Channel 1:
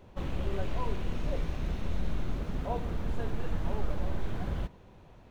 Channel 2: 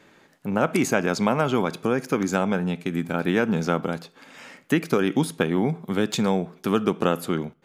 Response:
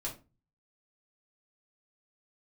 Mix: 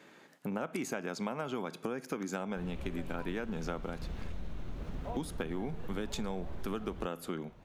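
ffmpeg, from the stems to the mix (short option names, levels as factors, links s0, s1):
-filter_complex "[0:a]adelay=2400,volume=0.794[s0];[1:a]highpass=150,volume=0.75,asplit=3[s1][s2][s3];[s1]atrim=end=4.32,asetpts=PTS-STARTPTS,afade=t=out:st=4.316:d=0.004:c=hsin[s4];[s2]atrim=start=4.32:end=5.14,asetpts=PTS-STARTPTS,volume=0[s5];[s3]atrim=start=5.14,asetpts=PTS-STARTPTS,afade=t=in:d=0.004:c=hsin[s6];[s4][s5][s6]concat=n=3:v=0:a=1[s7];[s0][s7]amix=inputs=2:normalize=0,acompressor=threshold=0.0178:ratio=4"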